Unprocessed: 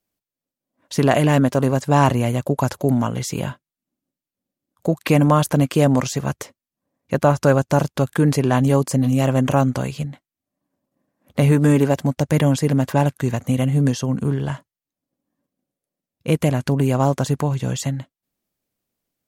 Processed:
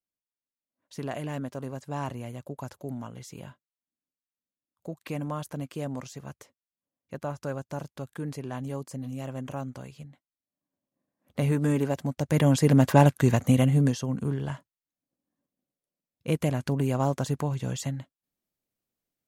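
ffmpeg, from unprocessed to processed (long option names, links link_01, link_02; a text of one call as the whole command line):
ffmpeg -i in.wav -af "afade=type=in:start_time=10.02:duration=1.41:silence=0.398107,afade=type=in:start_time=12.17:duration=0.69:silence=0.316228,afade=type=out:start_time=13.43:duration=0.56:silence=0.398107" out.wav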